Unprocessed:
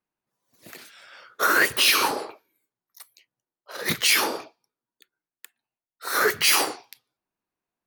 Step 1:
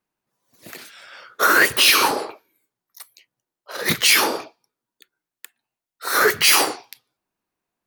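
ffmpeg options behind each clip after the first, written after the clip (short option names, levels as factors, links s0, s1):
-af "acontrast=57,volume=0.891"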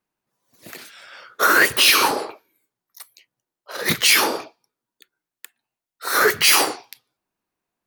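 -af anull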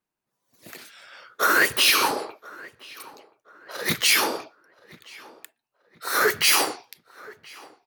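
-filter_complex "[0:a]asplit=2[s0][s1];[s1]adelay=1027,lowpass=f=2700:p=1,volume=0.0891,asplit=2[s2][s3];[s3]adelay=1027,lowpass=f=2700:p=1,volume=0.38,asplit=2[s4][s5];[s5]adelay=1027,lowpass=f=2700:p=1,volume=0.38[s6];[s0][s2][s4][s6]amix=inputs=4:normalize=0,volume=0.631"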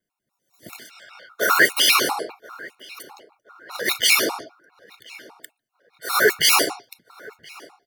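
-af "afftfilt=real='re*gt(sin(2*PI*5*pts/sr)*(1-2*mod(floor(b*sr/1024/720),2)),0)':imag='im*gt(sin(2*PI*5*pts/sr)*(1-2*mod(floor(b*sr/1024/720),2)),0)':win_size=1024:overlap=0.75,volume=1.88"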